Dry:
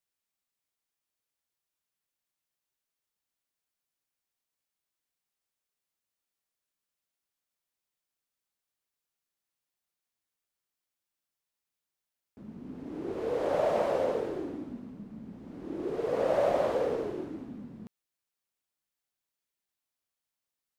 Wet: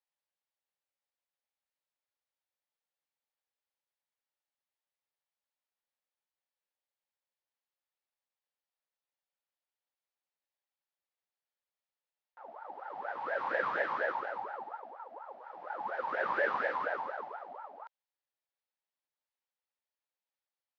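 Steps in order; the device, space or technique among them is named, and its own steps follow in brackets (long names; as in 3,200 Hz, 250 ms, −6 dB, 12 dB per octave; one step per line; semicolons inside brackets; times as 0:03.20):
voice changer toy (ring modulator whose carrier an LFO sweeps 800 Hz, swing 45%, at 4.2 Hz; loudspeaker in its box 500–4,700 Hz, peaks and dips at 540 Hz +9 dB, 850 Hz +7 dB, 1,800 Hz +3 dB)
level −3.5 dB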